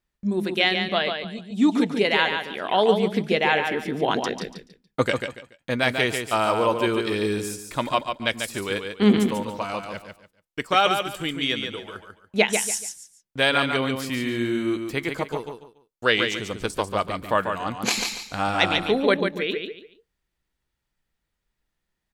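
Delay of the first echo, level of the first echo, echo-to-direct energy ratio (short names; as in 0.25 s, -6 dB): 0.143 s, -6.0 dB, -5.5 dB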